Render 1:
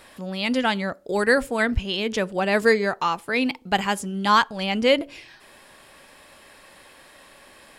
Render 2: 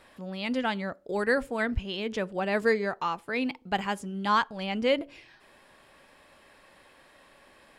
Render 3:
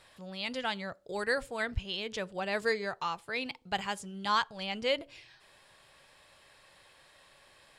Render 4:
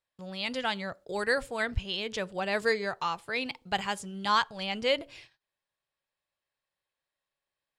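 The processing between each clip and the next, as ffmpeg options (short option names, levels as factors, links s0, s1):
-af "highshelf=f=4300:g=-8.5,volume=0.501"
-af "equalizer=f=125:t=o:w=1:g=6,equalizer=f=250:t=o:w=1:g=-9,equalizer=f=4000:t=o:w=1:g=6,equalizer=f=8000:t=o:w=1:g=6,volume=0.596"
-af "agate=range=0.0224:threshold=0.002:ratio=16:detection=peak,volume=1.41"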